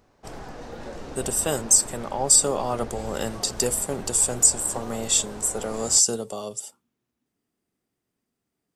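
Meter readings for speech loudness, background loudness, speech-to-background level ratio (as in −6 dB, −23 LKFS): −21.5 LKFS, −39.5 LKFS, 18.0 dB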